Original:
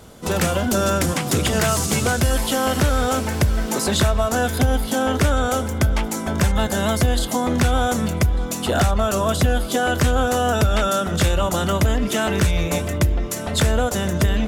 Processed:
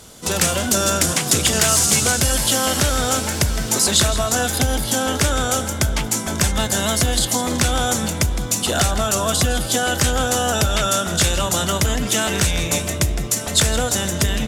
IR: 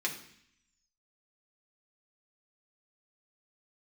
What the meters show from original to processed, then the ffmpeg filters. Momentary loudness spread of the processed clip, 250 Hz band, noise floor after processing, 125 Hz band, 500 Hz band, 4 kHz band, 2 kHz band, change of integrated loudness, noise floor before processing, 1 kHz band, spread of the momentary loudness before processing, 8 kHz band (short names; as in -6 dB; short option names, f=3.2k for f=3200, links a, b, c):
6 LU, -2.0 dB, -26 dBFS, -2.0 dB, -1.5 dB, +6.5 dB, +1.5 dB, +2.0 dB, -28 dBFS, -0.5 dB, 3 LU, +9.5 dB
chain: -filter_complex "[0:a]equalizer=f=7.2k:t=o:w=2.7:g=12,asplit=2[a][b];[b]asplit=5[c][d][e][f][g];[c]adelay=162,afreqshift=65,volume=-12.5dB[h];[d]adelay=324,afreqshift=130,volume=-19.1dB[i];[e]adelay=486,afreqshift=195,volume=-25.6dB[j];[f]adelay=648,afreqshift=260,volume=-32.2dB[k];[g]adelay=810,afreqshift=325,volume=-38.7dB[l];[h][i][j][k][l]amix=inputs=5:normalize=0[m];[a][m]amix=inputs=2:normalize=0,volume=-2.5dB"